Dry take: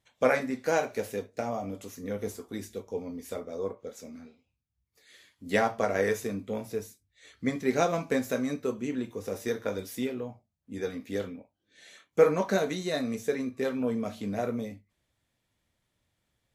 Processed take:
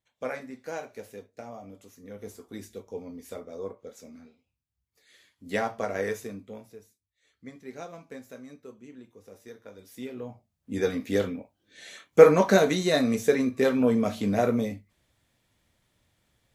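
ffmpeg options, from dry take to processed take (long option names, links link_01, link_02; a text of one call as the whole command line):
ffmpeg -i in.wav -af "volume=19dB,afade=type=in:start_time=2.1:duration=0.47:silence=0.473151,afade=type=out:start_time=6.1:duration=0.68:silence=0.251189,afade=type=in:start_time=9.77:duration=0.35:silence=0.316228,afade=type=in:start_time=10.12:duration=0.64:silence=0.251189" out.wav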